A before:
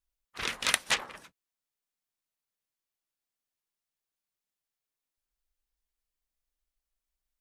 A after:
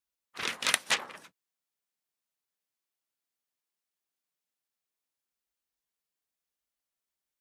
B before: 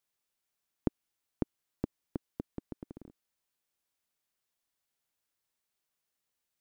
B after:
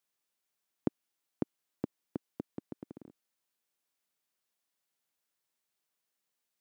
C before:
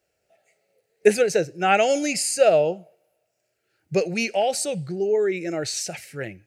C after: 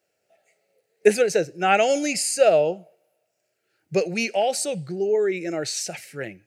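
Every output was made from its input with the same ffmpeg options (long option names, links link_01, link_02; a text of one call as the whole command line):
ffmpeg -i in.wav -af "highpass=140" out.wav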